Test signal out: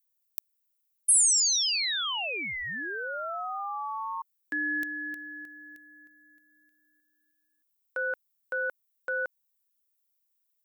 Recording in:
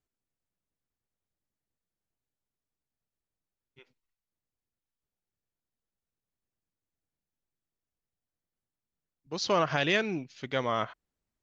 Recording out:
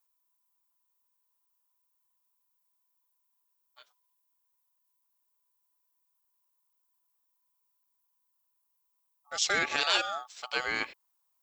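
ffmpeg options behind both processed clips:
-af "aeval=exprs='val(0)*sin(2*PI*1000*n/s)':c=same,aemphasis=mode=production:type=riaa"

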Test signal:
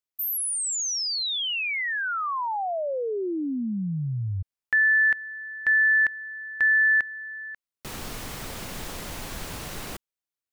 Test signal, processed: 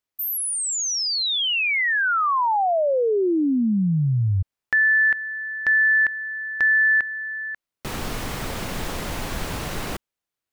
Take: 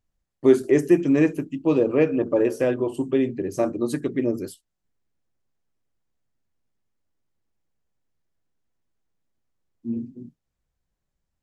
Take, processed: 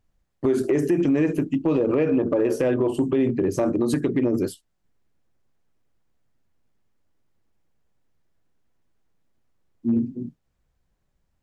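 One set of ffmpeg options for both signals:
-af "highshelf=f=3.7k:g=-6.5,acompressor=threshold=-23dB:ratio=12:attack=0.57:release=56:knee=1:detection=rms,volume=8dB"

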